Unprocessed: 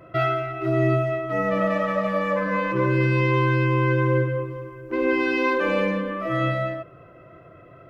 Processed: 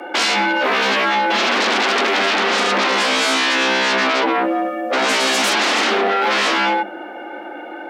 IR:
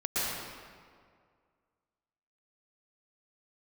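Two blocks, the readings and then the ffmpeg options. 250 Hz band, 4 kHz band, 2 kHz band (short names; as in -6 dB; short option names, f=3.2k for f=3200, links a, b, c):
+1.0 dB, +23.0 dB, +10.5 dB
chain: -af "aeval=exprs='0.355*sin(PI/2*7.08*val(0)/0.355)':c=same,afreqshift=200,volume=-5dB"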